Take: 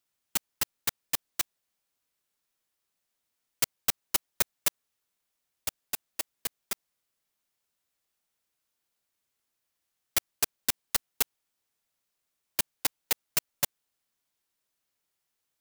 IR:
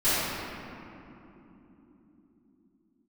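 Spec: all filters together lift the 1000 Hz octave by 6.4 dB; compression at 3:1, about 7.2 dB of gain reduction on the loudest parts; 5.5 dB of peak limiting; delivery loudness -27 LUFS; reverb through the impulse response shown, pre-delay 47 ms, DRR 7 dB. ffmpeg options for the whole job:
-filter_complex "[0:a]equalizer=f=1k:t=o:g=8,acompressor=threshold=-31dB:ratio=3,alimiter=limit=-18dB:level=0:latency=1,asplit=2[a][b];[1:a]atrim=start_sample=2205,adelay=47[c];[b][c]afir=irnorm=-1:irlink=0,volume=-23dB[d];[a][d]amix=inputs=2:normalize=0,volume=11.5dB"

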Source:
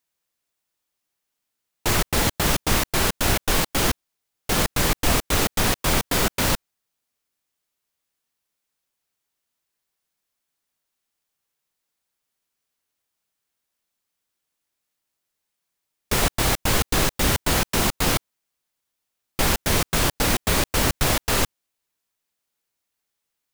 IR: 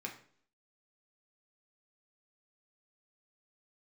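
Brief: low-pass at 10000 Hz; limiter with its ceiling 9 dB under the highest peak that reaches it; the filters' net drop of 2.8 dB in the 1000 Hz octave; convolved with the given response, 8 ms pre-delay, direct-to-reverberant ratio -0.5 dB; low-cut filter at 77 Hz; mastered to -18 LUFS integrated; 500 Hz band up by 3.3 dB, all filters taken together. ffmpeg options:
-filter_complex "[0:a]highpass=77,lowpass=10k,equalizer=f=500:t=o:g=5.5,equalizer=f=1k:t=o:g=-5.5,alimiter=limit=-17dB:level=0:latency=1,asplit=2[a][b];[1:a]atrim=start_sample=2205,adelay=8[c];[b][c]afir=irnorm=-1:irlink=0,volume=0.5dB[d];[a][d]amix=inputs=2:normalize=0,volume=7dB"

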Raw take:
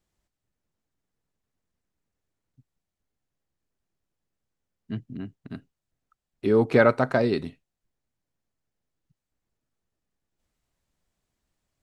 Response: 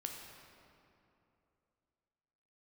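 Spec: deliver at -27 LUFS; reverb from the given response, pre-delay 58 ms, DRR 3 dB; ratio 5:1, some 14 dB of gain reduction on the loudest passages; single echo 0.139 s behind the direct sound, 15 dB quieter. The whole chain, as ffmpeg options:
-filter_complex "[0:a]acompressor=threshold=-29dB:ratio=5,aecho=1:1:139:0.178,asplit=2[a][b];[1:a]atrim=start_sample=2205,adelay=58[c];[b][c]afir=irnorm=-1:irlink=0,volume=-1.5dB[d];[a][d]amix=inputs=2:normalize=0,volume=7dB"

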